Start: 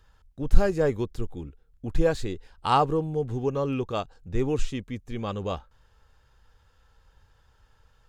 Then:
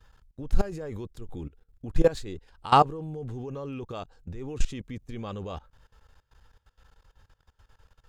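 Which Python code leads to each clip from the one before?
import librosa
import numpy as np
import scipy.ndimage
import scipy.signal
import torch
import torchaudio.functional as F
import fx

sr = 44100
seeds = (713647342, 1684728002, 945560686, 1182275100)

y = fx.level_steps(x, sr, step_db=20)
y = F.gain(torch.from_numpy(y), 4.5).numpy()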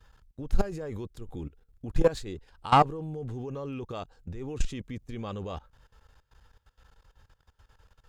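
y = fx.diode_clip(x, sr, knee_db=-10.5)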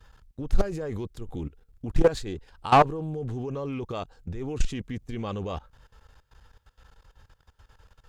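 y = 10.0 ** (-11.0 / 20.0) * np.tanh(x / 10.0 ** (-11.0 / 20.0))
y = fx.doppler_dist(y, sr, depth_ms=0.36)
y = F.gain(torch.from_numpy(y), 4.0).numpy()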